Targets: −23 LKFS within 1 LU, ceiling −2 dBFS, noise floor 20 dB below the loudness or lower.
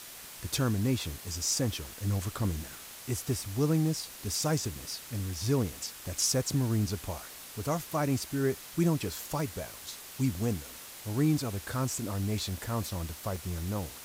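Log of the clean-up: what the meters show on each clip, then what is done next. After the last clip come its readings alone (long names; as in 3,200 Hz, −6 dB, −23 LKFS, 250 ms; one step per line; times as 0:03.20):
number of dropouts 1; longest dropout 3.2 ms; background noise floor −47 dBFS; target noise floor −52 dBFS; integrated loudness −32.0 LKFS; sample peak −15.5 dBFS; target loudness −23.0 LKFS
→ repair the gap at 0:13.36, 3.2 ms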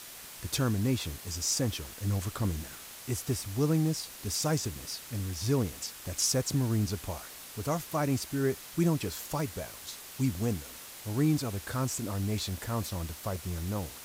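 number of dropouts 0; background noise floor −47 dBFS; target noise floor −52 dBFS
→ broadband denoise 6 dB, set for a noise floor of −47 dBFS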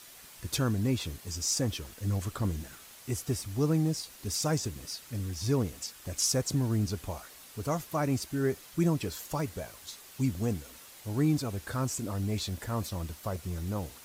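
background noise floor −52 dBFS; integrated loudness −32.0 LKFS; sample peak −16.0 dBFS; target loudness −23.0 LKFS
→ level +9 dB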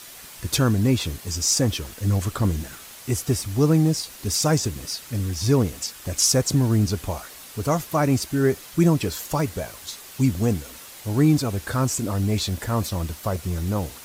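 integrated loudness −23.0 LKFS; sample peak −7.0 dBFS; background noise floor −43 dBFS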